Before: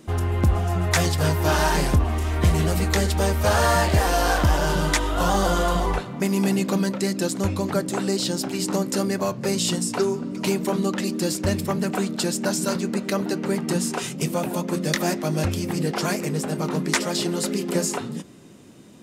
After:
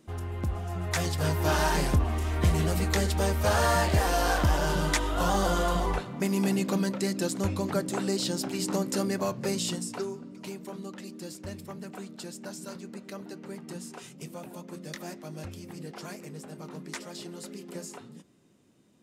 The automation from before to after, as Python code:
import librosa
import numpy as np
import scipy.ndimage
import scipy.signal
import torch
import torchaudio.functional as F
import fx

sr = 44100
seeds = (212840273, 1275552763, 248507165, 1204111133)

y = fx.gain(x, sr, db=fx.line((0.59, -11.5), (1.42, -5.0), (9.42, -5.0), (10.5, -16.5)))